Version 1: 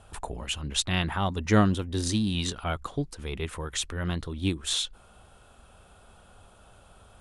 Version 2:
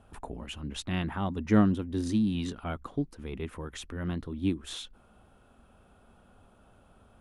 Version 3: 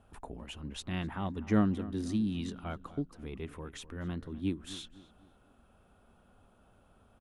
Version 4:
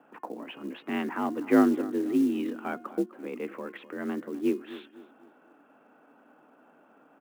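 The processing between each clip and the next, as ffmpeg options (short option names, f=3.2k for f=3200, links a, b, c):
-af "equalizer=f=250:t=o:w=1:g=9,equalizer=f=4k:t=o:w=1:g=-5,equalizer=f=8k:t=o:w=1:g=-8,volume=-6dB"
-filter_complex "[0:a]asplit=2[a][b];[b]adelay=253,lowpass=f=2.3k:p=1,volume=-16dB,asplit=2[c][d];[d]adelay=253,lowpass=f=2.3k:p=1,volume=0.41,asplit=2[e][f];[f]adelay=253,lowpass=f=2.3k:p=1,volume=0.41,asplit=2[g][h];[h]adelay=253,lowpass=f=2.3k:p=1,volume=0.41[i];[a][c][e][g][i]amix=inputs=5:normalize=0,volume=-4.5dB"
-af "highpass=f=170:t=q:w=0.5412,highpass=f=170:t=q:w=1.307,lowpass=f=2.6k:t=q:w=0.5176,lowpass=f=2.6k:t=q:w=0.7071,lowpass=f=2.6k:t=q:w=1.932,afreqshift=52,acrusher=bits=7:mode=log:mix=0:aa=0.000001,bandreject=f=356.8:t=h:w=4,bandreject=f=713.6:t=h:w=4,bandreject=f=1.0704k:t=h:w=4,bandreject=f=1.4272k:t=h:w=4,bandreject=f=1.784k:t=h:w=4,bandreject=f=2.1408k:t=h:w=4,bandreject=f=2.4976k:t=h:w=4,bandreject=f=2.8544k:t=h:w=4,bandreject=f=3.2112k:t=h:w=4,volume=7.5dB"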